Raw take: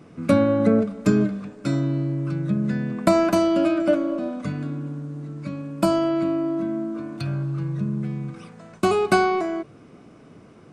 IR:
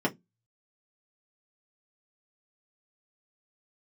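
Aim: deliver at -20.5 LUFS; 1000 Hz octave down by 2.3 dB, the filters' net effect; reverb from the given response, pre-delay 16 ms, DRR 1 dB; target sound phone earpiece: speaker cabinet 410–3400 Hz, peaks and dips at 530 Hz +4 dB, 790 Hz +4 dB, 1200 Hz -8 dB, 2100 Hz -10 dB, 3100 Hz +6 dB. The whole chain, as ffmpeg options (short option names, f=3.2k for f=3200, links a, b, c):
-filter_complex "[0:a]equalizer=f=1k:t=o:g=-4.5,asplit=2[a][b];[1:a]atrim=start_sample=2205,adelay=16[c];[b][c]afir=irnorm=-1:irlink=0,volume=-11dB[d];[a][d]amix=inputs=2:normalize=0,highpass=410,equalizer=f=530:t=q:w=4:g=4,equalizer=f=790:t=q:w=4:g=4,equalizer=f=1.2k:t=q:w=4:g=-8,equalizer=f=2.1k:t=q:w=4:g=-10,equalizer=f=3.1k:t=q:w=4:g=6,lowpass=f=3.4k:w=0.5412,lowpass=f=3.4k:w=1.3066,volume=2dB"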